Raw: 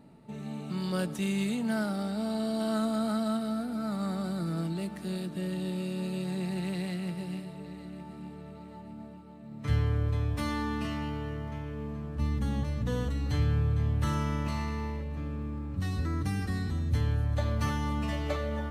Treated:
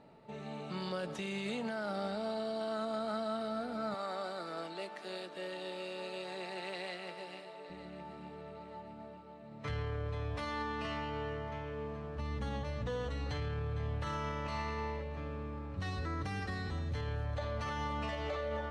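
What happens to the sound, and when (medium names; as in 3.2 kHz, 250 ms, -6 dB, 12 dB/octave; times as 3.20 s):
3.94–7.70 s: high-pass 420 Hz
whole clip: low-pass 5 kHz 12 dB/octave; resonant low shelf 360 Hz -7.5 dB, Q 1.5; peak limiter -30.5 dBFS; trim +1 dB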